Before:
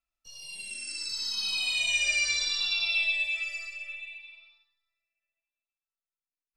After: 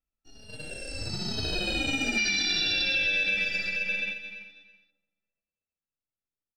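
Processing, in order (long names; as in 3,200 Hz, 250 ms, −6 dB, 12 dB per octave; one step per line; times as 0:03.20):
in parallel at −6 dB: decimation without filtering 41×
on the sum: high-shelf EQ 7,300 Hz −11.5 dB
noise gate −42 dBFS, range −7 dB
low-shelf EQ 190 Hz +8 dB
repeating echo 331 ms, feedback 18%, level −14 dB
gain on a spectral selection 0:02.18–0:04.90, 1,400–6,200 Hz +12 dB
brickwall limiter −14 dBFS, peak gain reduction 8 dB
downward compressor 4 to 1, threshold −24 dBFS, peak gain reduction 5 dB
every ending faded ahead of time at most 180 dB per second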